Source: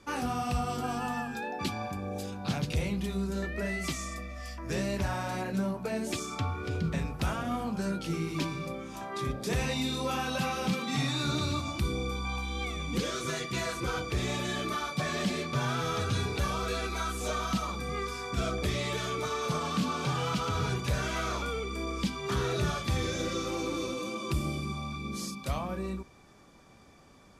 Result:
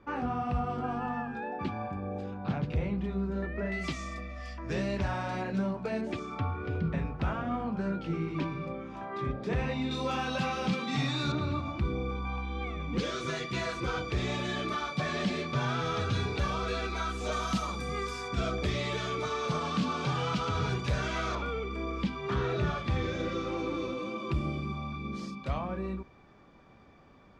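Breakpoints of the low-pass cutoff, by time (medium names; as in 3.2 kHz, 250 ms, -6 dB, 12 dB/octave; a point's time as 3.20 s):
1.8 kHz
from 3.72 s 4 kHz
from 6.01 s 2.2 kHz
from 9.91 s 4.7 kHz
from 11.32 s 2.1 kHz
from 12.98 s 4.6 kHz
from 17.32 s 9 kHz
from 18.28 s 5 kHz
from 21.35 s 2.8 kHz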